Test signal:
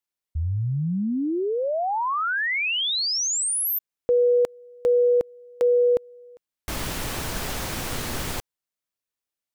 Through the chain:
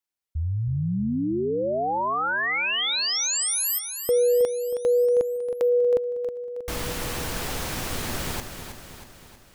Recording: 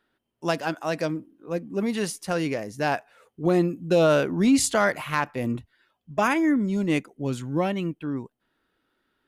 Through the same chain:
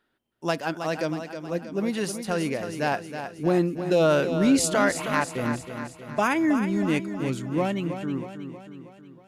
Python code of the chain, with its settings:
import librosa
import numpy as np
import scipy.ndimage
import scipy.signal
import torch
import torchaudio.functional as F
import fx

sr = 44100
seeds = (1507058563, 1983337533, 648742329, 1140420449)

y = fx.echo_feedback(x, sr, ms=318, feedback_pct=55, wet_db=-9)
y = y * 10.0 ** (-1.0 / 20.0)